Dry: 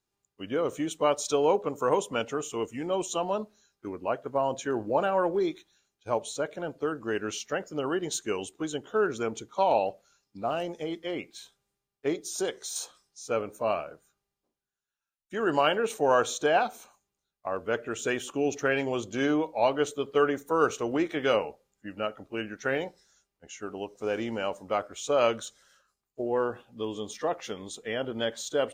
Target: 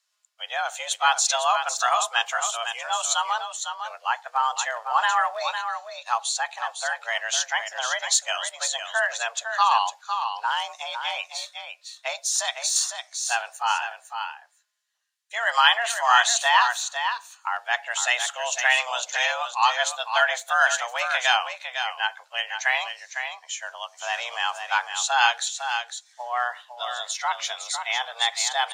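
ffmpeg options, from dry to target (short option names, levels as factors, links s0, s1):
-filter_complex "[0:a]highpass=690,lowpass=4900,aemphasis=mode=production:type=riaa,asplit=2[s0][s1];[s1]aecho=0:1:505:0.422[s2];[s0][s2]amix=inputs=2:normalize=0,afreqshift=240,volume=2.51"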